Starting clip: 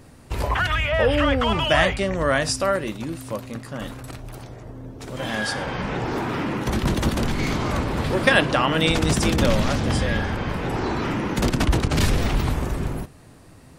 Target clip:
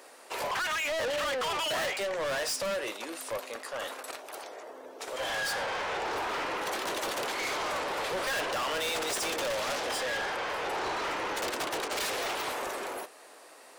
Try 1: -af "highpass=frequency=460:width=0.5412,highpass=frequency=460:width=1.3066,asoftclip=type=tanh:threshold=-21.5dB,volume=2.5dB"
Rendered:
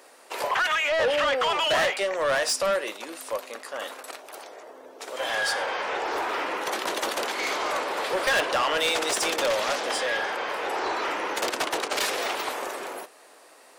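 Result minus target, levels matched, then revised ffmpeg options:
soft clipping: distortion −6 dB
-af "highpass=frequency=460:width=0.5412,highpass=frequency=460:width=1.3066,asoftclip=type=tanh:threshold=-32dB,volume=2.5dB"

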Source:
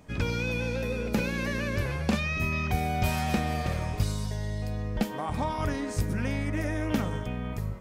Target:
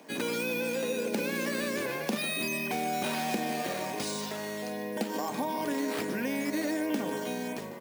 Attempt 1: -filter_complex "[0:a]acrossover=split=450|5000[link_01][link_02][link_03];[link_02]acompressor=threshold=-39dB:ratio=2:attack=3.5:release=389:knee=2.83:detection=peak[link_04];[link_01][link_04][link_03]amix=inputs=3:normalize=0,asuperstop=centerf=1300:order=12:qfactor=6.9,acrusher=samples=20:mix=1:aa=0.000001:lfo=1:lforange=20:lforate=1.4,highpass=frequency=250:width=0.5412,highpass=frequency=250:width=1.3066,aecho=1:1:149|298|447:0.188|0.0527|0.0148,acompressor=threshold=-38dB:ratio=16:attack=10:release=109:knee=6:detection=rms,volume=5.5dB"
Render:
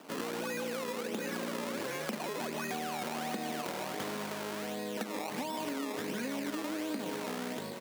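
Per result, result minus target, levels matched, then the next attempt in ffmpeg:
downward compressor: peak gain reduction +7 dB; sample-and-hold swept by an LFO: distortion +7 dB
-filter_complex "[0:a]acrossover=split=450|5000[link_01][link_02][link_03];[link_02]acompressor=threshold=-39dB:ratio=2:attack=3.5:release=389:knee=2.83:detection=peak[link_04];[link_01][link_04][link_03]amix=inputs=3:normalize=0,asuperstop=centerf=1300:order=12:qfactor=6.9,acrusher=samples=20:mix=1:aa=0.000001:lfo=1:lforange=20:lforate=1.4,highpass=frequency=250:width=0.5412,highpass=frequency=250:width=1.3066,aecho=1:1:149|298|447:0.188|0.0527|0.0148,acompressor=threshold=-30.5dB:ratio=16:attack=10:release=109:knee=6:detection=rms,volume=5.5dB"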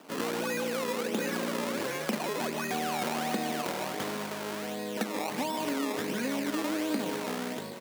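sample-and-hold swept by an LFO: distortion +7 dB
-filter_complex "[0:a]acrossover=split=450|5000[link_01][link_02][link_03];[link_02]acompressor=threshold=-39dB:ratio=2:attack=3.5:release=389:knee=2.83:detection=peak[link_04];[link_01][link_04][link_03]amix=inputs=3:normalize=0,asuperstop=centerf=1300:order=12:qfactor=6.9,acrusher=samples=5:mix=1:aa=0.000001:lfo=1:lforange=5:lforate=1.4,highpass=frequency=250:width=0.5412,highpass=frequency=250:width=1.3066,aecho=1:1:149|298|447:0.188|0.0527|0.0148,acompressor=threshold=-30.5dB:ratio=16:attack=10:release=109:knee=6:detection=rms,volume=5.5dB"

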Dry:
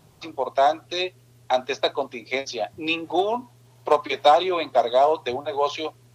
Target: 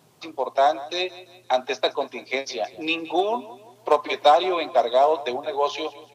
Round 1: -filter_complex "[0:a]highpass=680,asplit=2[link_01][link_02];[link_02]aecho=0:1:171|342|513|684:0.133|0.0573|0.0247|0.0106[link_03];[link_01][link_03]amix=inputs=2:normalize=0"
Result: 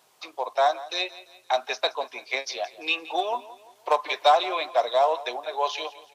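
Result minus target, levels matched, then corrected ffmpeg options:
250 Hz band −9.0 dB
-filter_complex "[0:a]highpass=190,asplit=2[link_01][link_02];[link_02]aecho=0:1:171|342|513|684:0.133|0.0573|0.0247|0.0106[link_03];[link_01][link_03]amix=inputs=2:normalize=0"

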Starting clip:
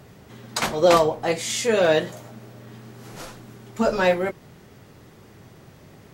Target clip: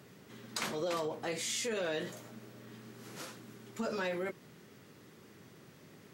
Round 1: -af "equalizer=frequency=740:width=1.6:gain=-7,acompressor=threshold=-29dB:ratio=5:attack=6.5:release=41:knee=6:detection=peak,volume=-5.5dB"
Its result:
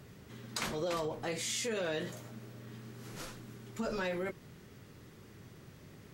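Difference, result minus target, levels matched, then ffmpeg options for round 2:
125 Hz band +5.0 dB
-af "highpass=170,equalizer=frequency=740:width=1.6:gain=-7,acompressor=threshold=-29dB:ratio=5:attack=6.5:release=41:knee=6:detection=peak,volume=-5.5dB"

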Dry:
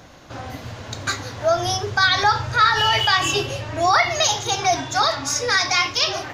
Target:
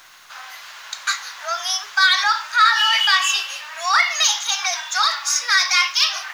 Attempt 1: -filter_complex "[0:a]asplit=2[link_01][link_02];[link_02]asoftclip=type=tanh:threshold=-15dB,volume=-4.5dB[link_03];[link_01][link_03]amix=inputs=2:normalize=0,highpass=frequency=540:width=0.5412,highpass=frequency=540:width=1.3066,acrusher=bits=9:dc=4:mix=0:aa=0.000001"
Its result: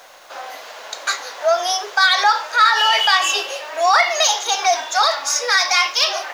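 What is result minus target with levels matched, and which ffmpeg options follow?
500 Hz band +16.0 dB
-filter_complex "[0:a]asplit=2[link_01][link_02];[link_02]asoftclip=type=tanh:threshold=-15dB,volume=-4.5dB[link_03];[link_01][link_03]amix=inputs=2:normalize=0,highpass=frequency=1100:width=0.5412,highpass=frequency=1100:width=1.3066,acrusher=bits=9:dc=4:mix=0:aa=0.000001"

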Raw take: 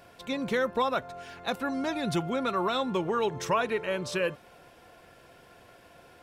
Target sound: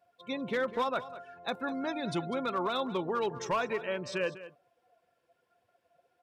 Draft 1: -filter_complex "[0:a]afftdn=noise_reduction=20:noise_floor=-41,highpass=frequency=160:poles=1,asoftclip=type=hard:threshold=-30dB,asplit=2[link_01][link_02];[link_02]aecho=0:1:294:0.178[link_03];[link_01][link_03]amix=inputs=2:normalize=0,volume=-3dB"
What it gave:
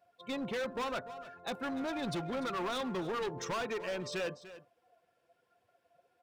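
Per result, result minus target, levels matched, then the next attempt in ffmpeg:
hard clipping: distortion +15 dB; echo 95 ms late
-filter_complex "[0:a]afftdn=noise_reduction=20:noise_floor=-41,highpass=frequency=160:poles=1,asoftclip=type=hard:threshold=-21dB,asplit=2[link_01][link_02];[link_02]aecho=0:1:294:0.178[link_03];[link_01][link_03]amix=inputs=2:normalize=0,volume=-3dB"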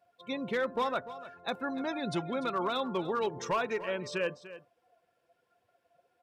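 echo 95 ms late
-filter_complex "[0:a]afftdn=noise_reduction=20:noise_floor=-41,highpass=frequency=160:poles=1,asoftclip=type=hard:threshold=-21dB,asplit=2[link_01][link_02];[link_02]aecho=0:1:199:0.178[link_03];[link_01][link_03]amix=inputs=2:normalize=0,volume=-3dB"

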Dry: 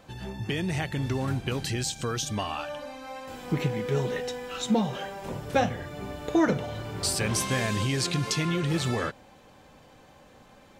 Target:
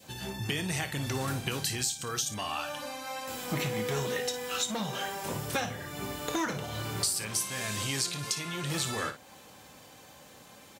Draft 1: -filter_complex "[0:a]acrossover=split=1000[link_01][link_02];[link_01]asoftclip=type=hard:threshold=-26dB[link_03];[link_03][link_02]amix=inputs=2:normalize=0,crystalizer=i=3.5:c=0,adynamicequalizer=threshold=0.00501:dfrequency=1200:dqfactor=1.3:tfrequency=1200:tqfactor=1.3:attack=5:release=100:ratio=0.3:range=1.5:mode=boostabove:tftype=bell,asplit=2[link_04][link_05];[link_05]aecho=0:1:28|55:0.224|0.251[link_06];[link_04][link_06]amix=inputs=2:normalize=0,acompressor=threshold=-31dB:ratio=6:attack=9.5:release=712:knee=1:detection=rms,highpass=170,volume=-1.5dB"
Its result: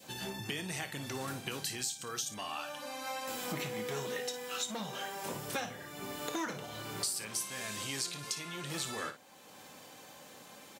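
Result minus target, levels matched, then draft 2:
downward compressor: peak gain reduction +5.5 dB; 125 Hz band −4.5 dB
-filter_complex "[0:a]acrossover=split=1000[link_01][link_02];[link_01]asoftclip=type=hard:threshold=-26dB[link_03];[link_03][link_02]amix=inputs=2:normalize=0,crystalizer=i=3.5:c=0,adynamicequalizer=threshold=0.00501:dfrequency=1200:dqfactor=1.3:tfrequency=1200:tqfactor=1.3:attack=5:release=100:ratio=0.3:range=1.5:mode=boostabove:tftype=bell,asplit=2[link_04][link_05];[link_05]aecho=0:1:28|55:0.224|0.251[link_06];[link_04][link_06]amix=inputs=2:normalize=0,acompressor=threshold=-24.5dB:ratio=6:attack=9.5:release=712:knee=1:detection=rms,highpass=74,volume=-1.5dB"

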